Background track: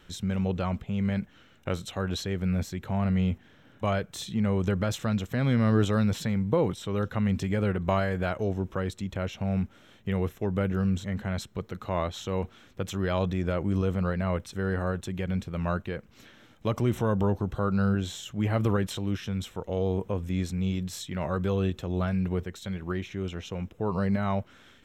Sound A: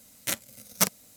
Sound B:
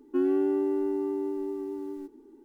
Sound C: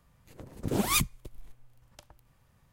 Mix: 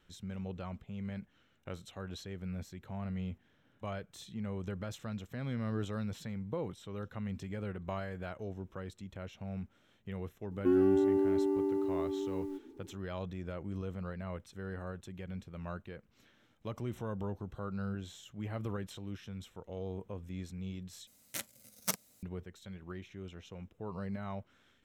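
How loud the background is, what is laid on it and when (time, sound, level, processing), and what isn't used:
background track -13 dB
10.51 s: add B -1.5 dB
21.07 s: replace with A -10.5 dB
not used: C

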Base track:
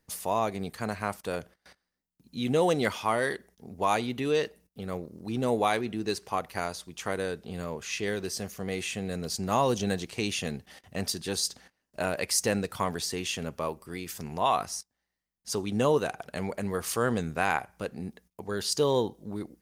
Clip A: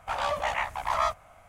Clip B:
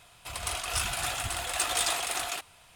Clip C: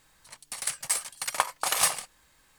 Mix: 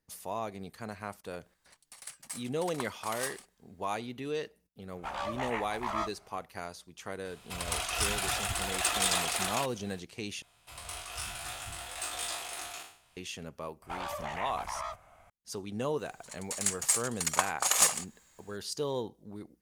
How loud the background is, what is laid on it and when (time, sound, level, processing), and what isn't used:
base track -8.5 dB
1.40 s: add C -14.5 dB
4.96 s: add A -7.5 dB
7.25 s: add B -0.5 dB
10.42 s: replace with B -11 dB + spectral sustain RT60 0.53 s
13.82 s: add A -4.5 dB + compression, threshold -29 dBFS
15.99 s: add C -3 dB + peaking EQ 7 kHz +12.5 dB 0.26 oct

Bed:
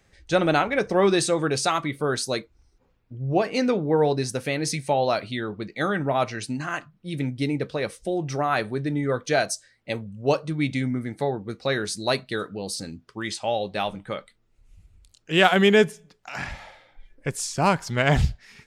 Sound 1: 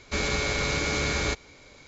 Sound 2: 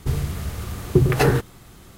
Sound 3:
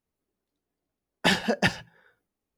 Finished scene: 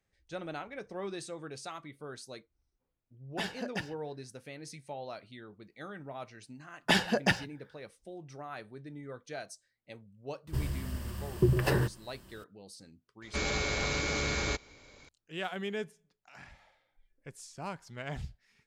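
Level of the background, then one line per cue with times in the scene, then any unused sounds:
bed -19.5 dB
2.13 s: add 3 -14 dB
5.64 s: add 3 -3.5 dB
10.47 s: add 2 -10.5 dB + rippled EQ curve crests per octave 1.3, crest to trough 8 dB
13.22 s: add 1 -5 dB

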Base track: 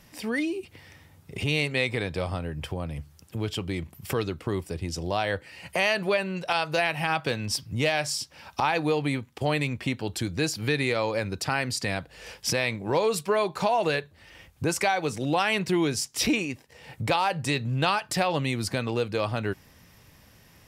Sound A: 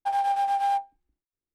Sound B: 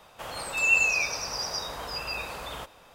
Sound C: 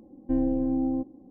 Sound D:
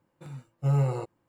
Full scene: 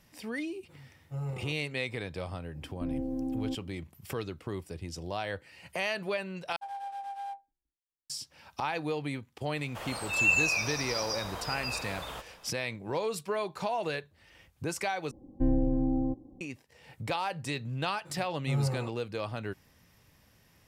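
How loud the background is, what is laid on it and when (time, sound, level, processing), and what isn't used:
base track -8 dB
0.48 s: add D -12 dB
2.52 s: add C -4 dB + peak limiter -23 dBFS
6.56 s: replace with A -14.5 dB
9.56 s: add B -3 dB
15.11 s: replace with C -1.5 dB + resonant low shelf 150 Hz +7.5 dB, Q 1.5
17.84 s: add D -5.5 dB

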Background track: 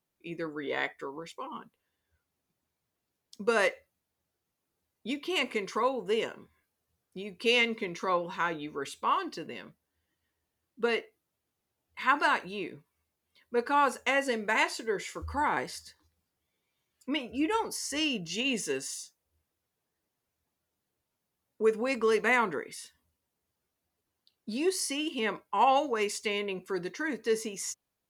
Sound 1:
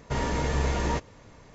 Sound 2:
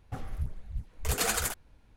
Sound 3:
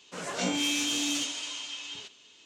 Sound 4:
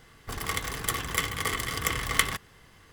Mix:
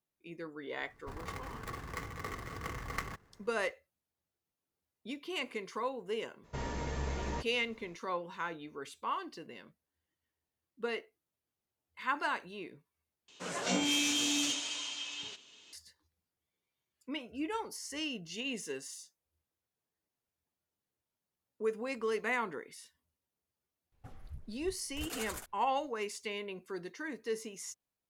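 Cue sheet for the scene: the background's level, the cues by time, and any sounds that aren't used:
background track -8 dB
0.79 s: add 4 -8.5 dB + median filter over 15 samples
6.43 s: add 1 -10.5 dB, fades 0.02 s
13.28 s: replace with 3 -2 dB
23.92 s: add 2 -13.5 dB

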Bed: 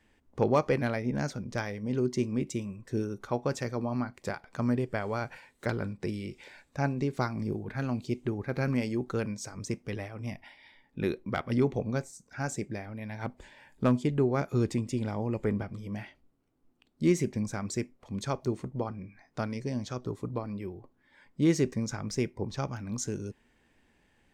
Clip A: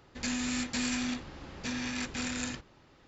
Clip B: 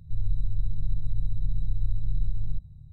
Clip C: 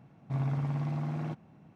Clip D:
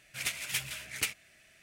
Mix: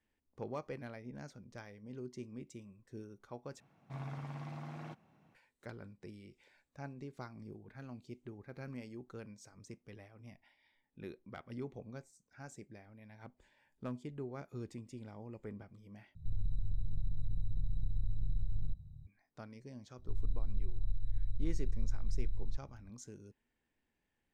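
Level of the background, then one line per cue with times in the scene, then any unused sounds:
bed -17 dB
3.60 s: replace with C -4 dB + bass shelf 490 Hz -10 dB
16.15 s: replace with B -5.5 dB + compression, threshold -21 dBFS
19.98 s: add B -11.5 dB + comb 3.1 ms, depth 59%
not used: A, D

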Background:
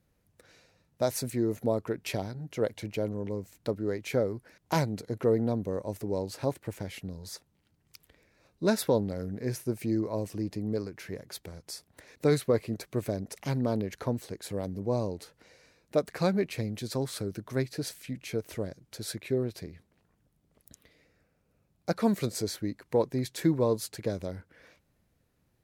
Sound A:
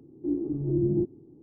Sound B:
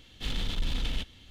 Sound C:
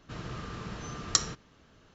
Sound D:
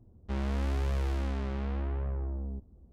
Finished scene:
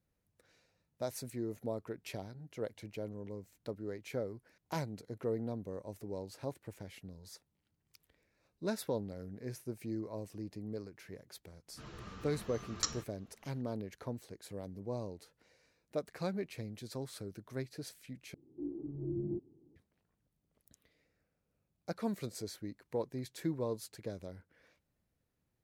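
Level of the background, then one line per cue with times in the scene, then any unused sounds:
background -10.5 dB
11.68 s: add C -6 dB + three-phase chorus
18.34 s: replace with A -12.5 dB
not used: B, D

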